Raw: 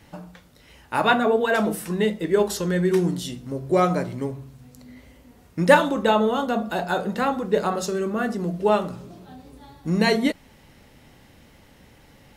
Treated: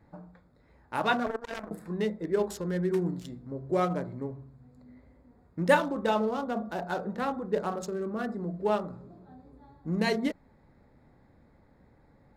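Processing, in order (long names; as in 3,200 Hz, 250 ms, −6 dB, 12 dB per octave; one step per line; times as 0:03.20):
adaptive Wiener filter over 15 samples
0:01.26–0:01.71: power curve on the samples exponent 3
level −7.5 dB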